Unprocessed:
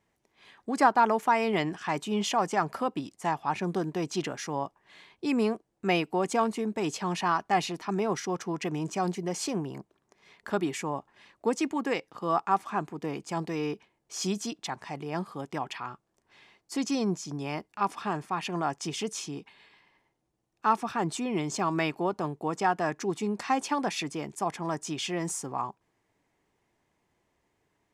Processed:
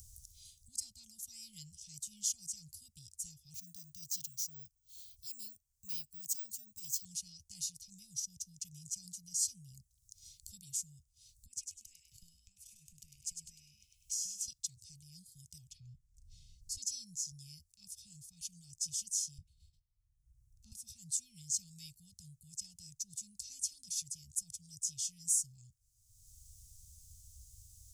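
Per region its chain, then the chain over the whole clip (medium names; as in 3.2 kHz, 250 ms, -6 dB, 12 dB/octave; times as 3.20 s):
3.54–7.05 s: bass shelf 360 Hz -4 dB + careless resampling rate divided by 2×, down filtered, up hold
11.46–14.48 s: high-order bell 2.2 kHz +12 dB 1 oct + compression 8:1, threshold -38 dBFS + frequency-shifting echo 100 ms, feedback 33%, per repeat +56 Hz, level -5 dB
15.70–16.77 s: low-pass 2.3 kHz 6 dB/octave + bass shelf 320 Hz +10 dB + comb 5.4 ms, depth 38%
19.38–20.72 s: gate -59 dBFS, range -29 dB + tilt shelf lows +10 dB, about 670 Hz
whole clip: upward compressor, threshold -33 dBFS; inverse Chebyshev band-stop 310–1700 Hz, stop band 70 dB; trim +5.5 dB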